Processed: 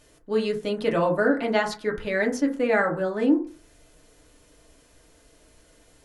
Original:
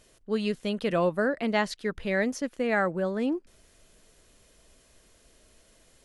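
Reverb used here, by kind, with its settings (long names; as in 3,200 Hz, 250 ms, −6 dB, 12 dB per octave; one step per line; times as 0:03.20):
feedback delay network reverb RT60 0.39 s, low-frequency decay 1×, high-frequency decay 0.3×, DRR 0 dB
level +1 dB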